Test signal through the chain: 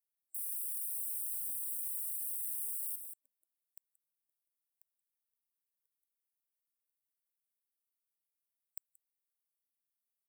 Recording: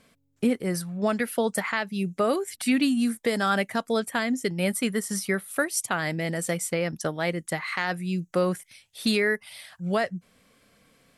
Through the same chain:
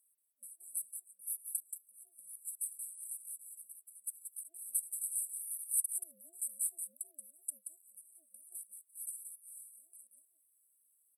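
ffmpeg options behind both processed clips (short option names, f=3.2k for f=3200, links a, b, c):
-filter_complex "[0:a]aderivative,asplit=2[a][b];[b]aecho=0:1:179:0.447[c];[a][c]amix=inputs=2:normalize=0,afftfilt=real='re*(1-between(b*sr/4096,170,8200))':imag='im*(1-between(b*sr/4096,170,8200))':win_size=4096:overlap=0.75,aeval=exprs='val(0)*sin(2*PI*450*n/s+450*0.2/2.8*sin(2*PI*2.8*n/s))':c=same"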